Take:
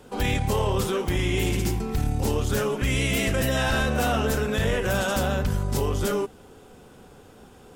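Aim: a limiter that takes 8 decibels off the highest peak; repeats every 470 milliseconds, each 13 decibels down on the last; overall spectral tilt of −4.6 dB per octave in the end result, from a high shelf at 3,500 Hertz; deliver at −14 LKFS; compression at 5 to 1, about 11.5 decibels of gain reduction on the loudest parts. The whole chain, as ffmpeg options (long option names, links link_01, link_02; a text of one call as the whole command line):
ffmpeg -i in.wav -af "highshelf=frequency=3500:gain=5.5,acompressor=threshold=-33dB:ratio=5,alimiter=level_in=4.5dB:limit=-24dB:level=0:latency=1,volume=-4.5dB,aecho=1:1:470|940|1410:0.224|0.0493|0.0108,volume=23.5dB" out.wav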